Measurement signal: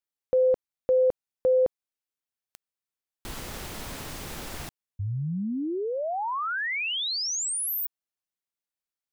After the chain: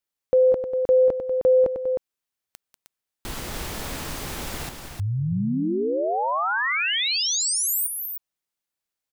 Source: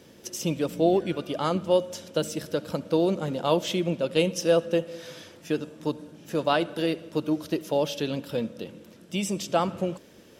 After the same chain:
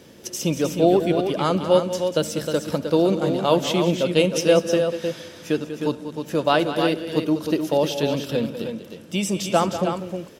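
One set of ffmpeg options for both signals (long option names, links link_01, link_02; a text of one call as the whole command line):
ffmpeg -i in.wav -af "aecho=1:1:192|310:0.266|0.447,volume=4.5dB" out.wav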